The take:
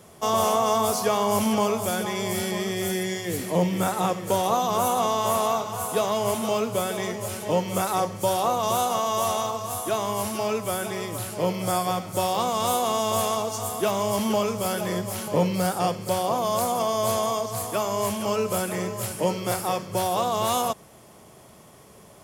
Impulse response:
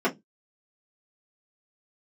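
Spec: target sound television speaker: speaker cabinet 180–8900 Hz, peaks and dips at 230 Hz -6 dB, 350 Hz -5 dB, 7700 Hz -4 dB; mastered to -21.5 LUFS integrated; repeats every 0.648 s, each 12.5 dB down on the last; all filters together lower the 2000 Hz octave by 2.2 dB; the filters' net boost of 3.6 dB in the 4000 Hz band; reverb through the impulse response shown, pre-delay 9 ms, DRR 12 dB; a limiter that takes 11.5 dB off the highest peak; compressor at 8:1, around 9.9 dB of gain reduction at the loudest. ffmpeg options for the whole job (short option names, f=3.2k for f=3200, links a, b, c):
-filter_complex "[0:a]equalizer=f=2k:t=o:g=-5,equalizer=f=4k:t=o:g=6.5,acompressor=threshold=-28dB:ratio=8,alimiter=level_in=3dB:limit=-24dB:level=0:latency=1,volume=-3dB,aecho=1:1:648|1296|1944:0.237|0.0569|0.0137,asplit=2[a][b];[1:a]atrim=start_sample=2205,adelay=9[c];[b][c]afir=irnorm=-1:irlink=0,volume=-26dB[d];[a][d]amix=inputs=2:normalize=0,highpass=f=180:w=0.5412,highpass=f=180:w=1.3066,equalizer=f=230:t=q:w=4:g=-6,equalizer=f=350:t=q:w=4:g=-5,equalizer=f=7.7k:t=q:w=4:g=-4,lowpass=f=8.9k:w=0.5412,lowpass=f=8.9k:w=1.3066,volume=15.5dB"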